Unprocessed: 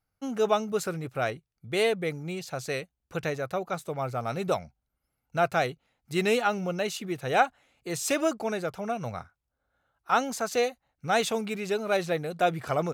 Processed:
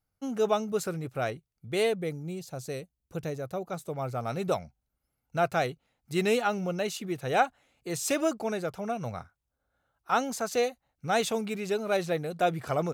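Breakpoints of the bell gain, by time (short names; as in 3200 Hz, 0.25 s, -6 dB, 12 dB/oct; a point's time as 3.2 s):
bell 1900 Hz 2.8 oct
1.84 s -4 dB
2.28 s -12.5 dB
3.29 s -12.5 dB
4.24 s -3 dB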